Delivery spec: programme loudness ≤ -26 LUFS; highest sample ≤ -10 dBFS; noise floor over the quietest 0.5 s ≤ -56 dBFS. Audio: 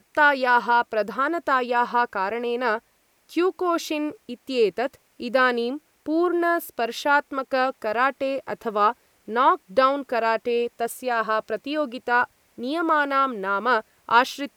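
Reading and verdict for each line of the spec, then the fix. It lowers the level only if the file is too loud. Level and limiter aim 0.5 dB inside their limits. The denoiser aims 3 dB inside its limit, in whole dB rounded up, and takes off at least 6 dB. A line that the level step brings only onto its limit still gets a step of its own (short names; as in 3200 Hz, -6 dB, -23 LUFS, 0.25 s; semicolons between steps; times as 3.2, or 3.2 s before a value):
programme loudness -23.0 LUFS: fail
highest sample -5.0 dBFS: fail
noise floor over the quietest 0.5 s -63 dBFS: OK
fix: gain -3.5 dB; limiter -10.5 dBFS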